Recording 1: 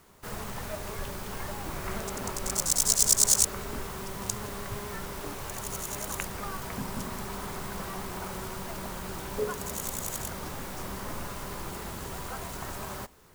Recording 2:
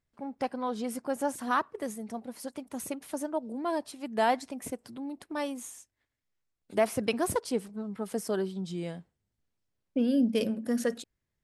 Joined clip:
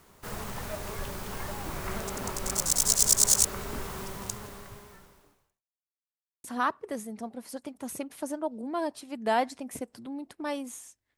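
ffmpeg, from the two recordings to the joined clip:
ffmpeg -i cue0.wav -i cue1.wav -filter_complex "[0:a]apad=whole_dur=11.17,atrim=end=11.17,asplit=2[link_01][link_02];[link_01]atrim=end=5.64,asetpts=PTS-STARTPTS,afade=type=out:start_time=4:duration=1.64:curve=qua[link_03];[link_02]atrim=start=5.64:end=6.44,asetpts=PTS-STARTPTS,volume=0[link_04];[1:a]atrim=start=1.35:end=6.08,asetpts=PTS-STARTPTS,afade=type=in:duration=0.004:curve=hsin[link_05];[link_03][link_04][link_05]concat=n=3:v=0:a=1" out.wav

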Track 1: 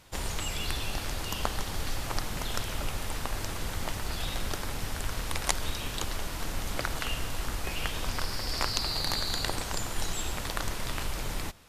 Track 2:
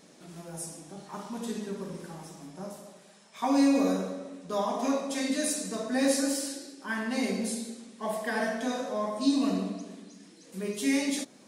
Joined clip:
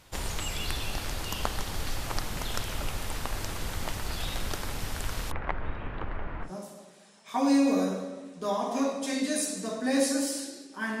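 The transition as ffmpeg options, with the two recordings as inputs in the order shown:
ffmpeg -i cue0.wav -i cue1.wav -filter_complex "[0:a]asplit=3[link_01][link_02][link_03];[link_01]afade=type=out:start_time=5.3:duration=0.02[link_04];[link_02]lowpass=frequency=2000:width=0.5412,lowpass=frequency=2000:width=1.3066,afade=type=in:start_time=5.3:duration=0.02,afade=type=out:start_time=6.51:duration=0.02[link_05];[link_03]afade=type=in:start_time=6.51:duration=0.02[link_06];[link_04][link_05][link_06]amix=inputs=3:normalize=0,apad=whole_dur=11,atrim=end=11,atrim=end=6.51,asetpts=PTS-STARTPTS[link_07];[1:a]atrim=start=2.49:end=7.08,asetpts=PTS-STARTPTS[link_08];[link_07][link_08]acrossfade=duration=0.1:curve1=tri:curve2=tri" out.wav

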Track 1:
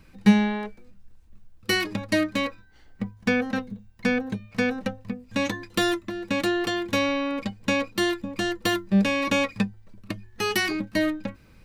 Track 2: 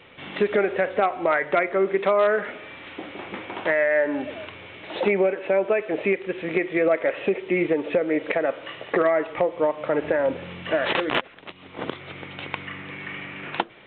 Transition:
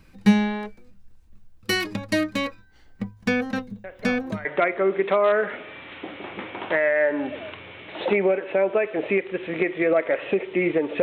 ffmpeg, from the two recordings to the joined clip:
ffmpeg -i cue0.wav -i cue1.wav -filter_complex "[1:a]asplit=2[link_01][link_02];[0:a]apad=whole_dur=11.02,atrim=end=11.02,atrim=end=4.452[link_03];[link_02]atrim=start=1.398:end=7.97[link_04];[link_01]atrim=start=0.79:end=1.4,asetpts=PTS-STARTPTS,volume=-16dB,afade=type=in:duration=0.004:curve=hsin,afade=type=out:start_time=0.606:duration=0.004:curve=hsin,adelay=3840[link_05];[link_03][link_04]acrossfade=duration=0.004:curve1=hsin:curve2=hsin[link_06];[link_06][link_05]amix=inputs=2:normalize=0" out.wav

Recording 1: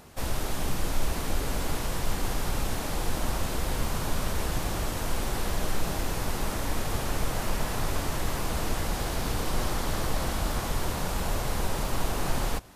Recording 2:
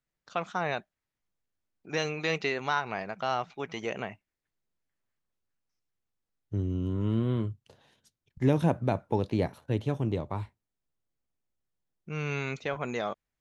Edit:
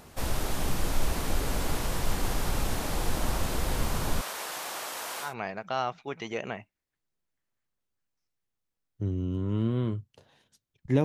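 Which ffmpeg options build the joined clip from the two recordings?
ffmpeg -i cue0.wav -i cue1.wav -filter_complex "[0:a]asettb=1/sr,asplit=3[link_01][link_02][link_03];[link_01]atrim=end=4.214[link_04];[link_02]atrim=start=4.21:end=5.34,asetpts=PTS-STARTPTS,afade=type=in:duration=0.004:curve=qsin,afade=type=out:start_time=1.126:duration=0.004:curve=qsin,highpass=700[link_05];[link_03]atrim=start=5.336[link_06];[link_04][link_05]acrossfade=duration=0.004:curve1=hsin:curve2=qsin[link_07];[link_07][link_06]acrossfade=duration=0.004:curve1=qsin:curve2=hsin,apad=whole_dur=11.04,atrim=end=11.04,atrim=end=5.34,asetpts=PTS-STARTPTS[link_08];[1:a]atrim=start=2.72:end=8.56,asetpts=PTS-STARTPTS[link_09];[link_08][link_09]acrossfade=duration=0.14:curve1=tri:curve2=tri" out.wav

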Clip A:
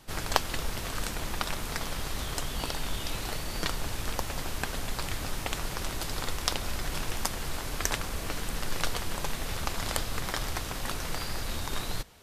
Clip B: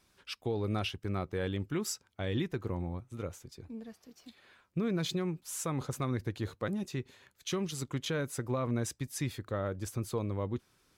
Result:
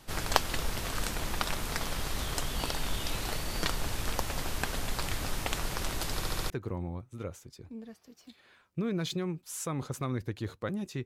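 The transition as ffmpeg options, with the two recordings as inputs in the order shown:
ffmpeg -i cue0.wav -i cue1.wav -filter_complex "[0:a]apad=whole_dur=11.05,atrim=end=11.05,asplit=5[link_01][link_02][link_03][link_04][link_05];[link_01]atrim=end=6.222[link_06];[link_02]atrim=start=6.148:end=6.222[link_07];[link_03]atrim=start=6.148:end=6.222[link_08];[link_04]atrim=start=6.148:end=6.222[link_09];[link_05]atrim=start=6.148:end=6.222[link_10];[1:a]atrim=start=2.488:end=7.04[link_11];[link_06][link_07]acrossfade=duration=0.004:curve1=hsin:curve2=hsin[link_12];[link_12][link_08]acrossfade=duration=0.004:curve1=hsin:curve2=hsin[link_13];[link_13][link_09]acrossfade=duration=0.004:curve1=hsin:curve2=hsin[link_14];[link_14][link_10]acrossfade=duration=0.004:curve1=hsin:curve2=hsin[link_15];[link_15][link_11]acrossfade=duration=0.004:curve1=hsin:curve2=hsin" out.wav

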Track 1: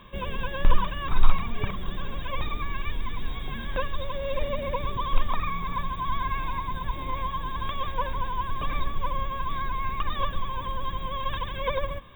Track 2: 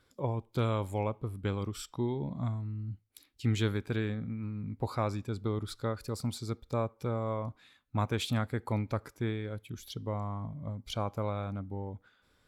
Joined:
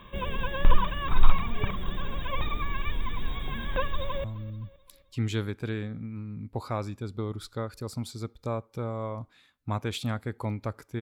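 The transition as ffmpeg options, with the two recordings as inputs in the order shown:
ffmpeg -i cue0.wav -i cue1.wav -filter_complex "[0:a]apad=whole_dur=11.01,atrim=end=11.01,atrim=end=4.242[link_01];[1:a]atrim=start=2.508:end=9.28[link_02];[link_01][link_02]acrossfade=duration=0.004:curve1=hsin:curve2=hsin,asplit=2[link_03][link_04];[link_04]afade=type=in:start_time=3.96:duration=0.01,afade=type=out:start_time=4.24:duration=0.01,aecho=0:1:260|520|780|1040:0.125893|0.0629463|0.0314731|0.0157366[link_05];[link_03][link_05]amix=inputs=2:normalize=0" out.wav

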